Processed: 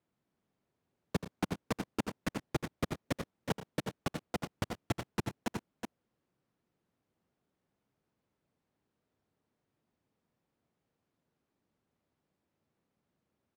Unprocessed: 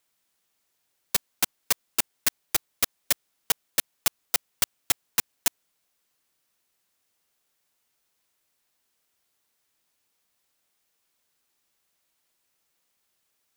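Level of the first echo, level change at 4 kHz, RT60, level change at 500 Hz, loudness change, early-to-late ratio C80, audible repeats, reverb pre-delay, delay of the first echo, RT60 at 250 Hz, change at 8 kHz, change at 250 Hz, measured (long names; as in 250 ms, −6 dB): −12.0 dB, −15.5 dB, no reverb audible, +2.5 dB, −12.5 dB, no reverb audible, 3, no reverb audible, 81 ms, no reverb audible, −22.0 dB, +8.5 dB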